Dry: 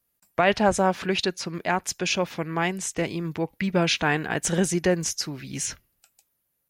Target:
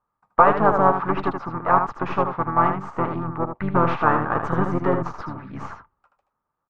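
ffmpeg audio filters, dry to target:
ffmpeg -i in.wav -filter_complex "[0:a]aeval=exprs='0.422*(cos(1*acos(clip(val(0)/0.422,-1,1)))-cos(1*PI/2))+0.00944*(cos(5*acos(clip(val(0)/0.422,-1,1)))-cos(5*PI/2))+0.0422*(cos(8*acos(clip(val(0)/0.422,-1,1)))-cos(8*PI/2))':channel_layout=same,lowpass=frequency=1200:width_type=q:width=9.1,asplit=2[link_01][link_02];[link_02]aecho=0:1:78:0.447[link_03];[link_01][link_03]amix=inputs=2:normalize=0,asplit=2[link_04][link_05];[link_05]asetrate=33038,aresample=44100,atempo=1.33484,volume=-4dB[link_06];[link_04][link_06]amix=inputs=2:normalize=0,volume=-3dB" out.wav

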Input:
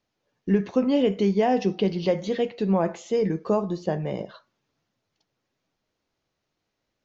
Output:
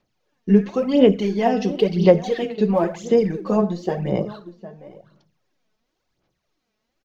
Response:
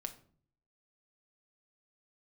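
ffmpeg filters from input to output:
-filter_complex "[0:a]asplit=2[link_01][link_02];[link_02]adelay=758,volume=-14dB,highshelf=frequency=4000:gain=-17.1[link_03];[link_01][link_03]amix=inputs=2:normalize=0,asplit=2[link_04][link_05];[1:a]atrim=start_sample=2205[link_06];[link_05][link_06]afir=irnorm=-1:irlink=0,volume=4.5dB[link_07];[link_04][link_07]amix=inputs=2:normalize=0,aphaser=in_gain=1:out_gain=1:delay=4.7:decay=0.62:speed=0.96:type=sinusoidal,volume=-6dB"

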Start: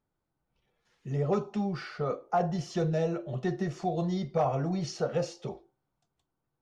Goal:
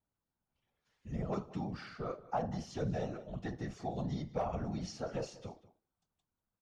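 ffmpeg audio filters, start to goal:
ffmpeg -i in.wav -af "equalizer=frequency=380:width_type=o:width=0.54:gain=-6.5,afftfilt=real='hypot(re,im)*cos(2*PI*random(0))':imag='hypot(re,im)*sin(2*PI*random(1))':win_size=512:overlap=0.75,aecho=1:1:190:0.119,volume=-1dB" out.wav

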